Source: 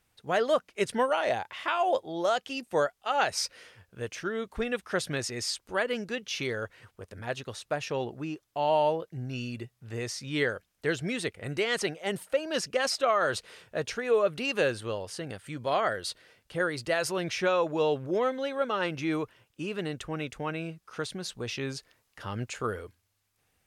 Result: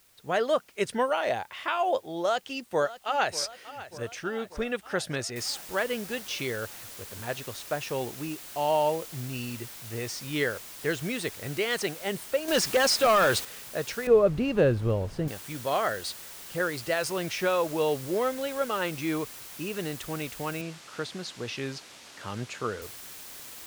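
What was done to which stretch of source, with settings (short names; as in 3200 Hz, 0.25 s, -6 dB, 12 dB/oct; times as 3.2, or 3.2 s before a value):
2.22–3.38 echo throw 0.59 s, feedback 65%, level -15.5 dB
5.36 noise floor step -62 dB -44 dB
12.48–13.45 sample leveller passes 2
14.07–15.28 tilt -4.5 dB/oct
20.61–22.82 BPF 100–6300 Hz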